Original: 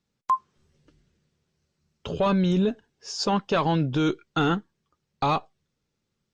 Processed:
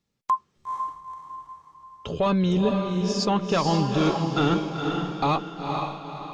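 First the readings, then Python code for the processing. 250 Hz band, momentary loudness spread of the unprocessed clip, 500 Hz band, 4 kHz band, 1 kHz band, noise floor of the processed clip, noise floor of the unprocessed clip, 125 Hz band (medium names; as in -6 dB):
+2.0 dB, 9 LU, +2.0 dB, +2.0 dB, +1.5 dB, -71 dBFS, -80 dBFS, +2.0 dB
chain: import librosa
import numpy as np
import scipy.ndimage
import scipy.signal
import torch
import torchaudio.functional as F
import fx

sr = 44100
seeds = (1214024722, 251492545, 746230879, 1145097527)

p1 = fx.notch(x, sr, hz=1500.0, q=12.0)
y = p1 + fx.echo_diffused(p1, sr, ms=482, feedback_pct=44, wet_db=-3.5, dry=0)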